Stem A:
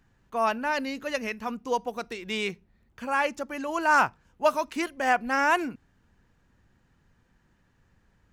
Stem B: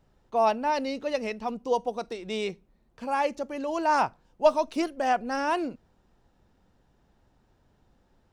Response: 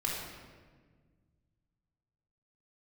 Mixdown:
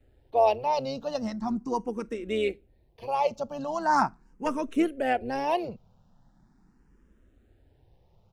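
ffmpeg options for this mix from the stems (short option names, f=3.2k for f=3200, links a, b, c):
-filter_complex "[0:a]asplit=2[a][b];[b]afreqshift=-1.6[c];[a][c]amix=inputs=2:normalize=1,volume=-8dB[d];[1:a]asoftclip=type=hard:threshold=-10.5dB,adelay=4.8,volume=1.5dB[e];[d][e]amix=inputs=2:normalize=0,lowshelf=f=410:g=8,tremolo=f=130:d=0.4,asplit=2[f][g];[g]afreqshift=0.4[h];[f][h]amix=inputs=2:normalize=1"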